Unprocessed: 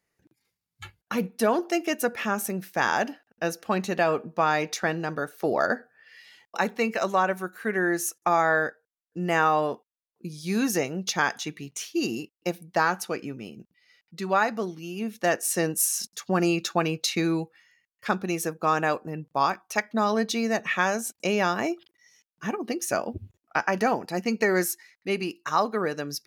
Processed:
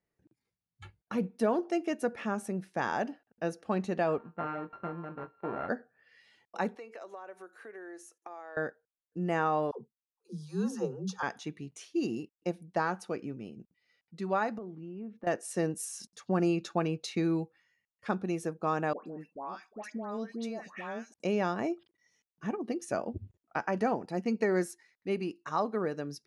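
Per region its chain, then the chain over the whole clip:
4.18–5.69 s: sorted samples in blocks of 32 samples + four-pole ladder low-pass 2.1 kHz, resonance 25% + doubling 23 ms -9.5 dB
6.75–8.57 s: compression, threshold -35 dBFS + high-pass 340 Hz 24 dB/octave
9.71–11.23 s: median filter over 3 samples + static phaser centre 430 Hz, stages 8 + phase dispersion lows, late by 102 ms, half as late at 410 Hz
14.58–15.27 s: low-pass 1.5 kHz + compression 4:1, threshold -35 dBFS
18.93–21.14 s: steep high-pass 180 Hz 48 dB/octave + compression 2:1, threshold -34 dBFS + phase dispersion highs, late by 137 ms, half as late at 1.4 kHz
whole clip: Chebyshev low-pass 11 kHz, order 6; tilt shelf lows +6 dB, about 1.2 kHz; trim -8 dB

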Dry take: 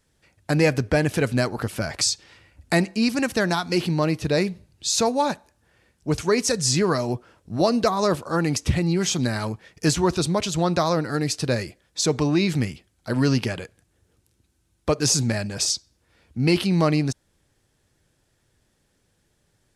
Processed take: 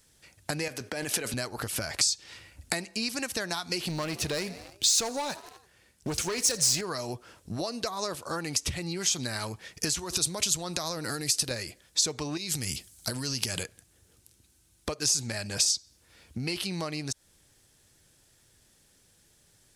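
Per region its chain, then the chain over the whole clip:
0.68–1.34 s: expander -37 dBFS + high-pass 200 Hz + compressor with a negative ratio -26 dBFS
3.87–6.81 s: frequency-shifting echo 84 ms, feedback 59%, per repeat +50 Hz, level -22.5 dB + waveshaping leveller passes 2
9.99–11.51 s: compression 12:1, threshold -26 dBFS + treble shelf 6 kHz +11 dB
12.37–13.63 s: tone controls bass +4 dB, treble +12 dB + compression 10:1, threshold -25 dBFS
whole clip: dynamic bell 190 Hz, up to -6 dB, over -33 dBFS, Q 0.77; compression 10:1, threshold -31 dBFS; treble shelf 3.1 kHz +11.5 dB

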